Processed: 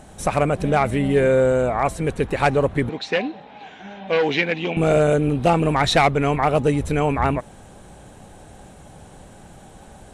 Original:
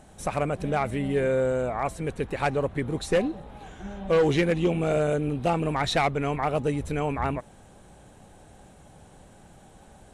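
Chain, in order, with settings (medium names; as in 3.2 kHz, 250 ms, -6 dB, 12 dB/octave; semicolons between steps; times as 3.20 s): 2.89–4.77 s: cabinet simulation 310–4900 Hz, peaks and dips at 360 Hz -9 dB, 540 Hz -7 dB, 1.2 kHz -8 dB, 2.4 kHz +4 dB; trim +7.5 dB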